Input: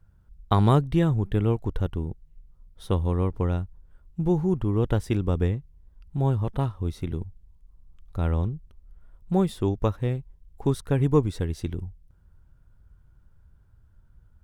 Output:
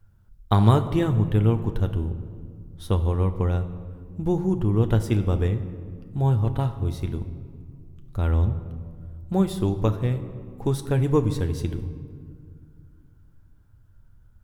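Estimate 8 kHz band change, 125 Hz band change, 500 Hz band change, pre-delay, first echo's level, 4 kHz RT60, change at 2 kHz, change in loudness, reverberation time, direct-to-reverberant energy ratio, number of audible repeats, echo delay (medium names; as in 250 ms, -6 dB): no reading, +3.0 dB, +0.5 dB, 9 ms, no echo, 1.2 s, +1.5 dB, +2.0 dB, 2.1 s, 7.0 dB, no echo, no echo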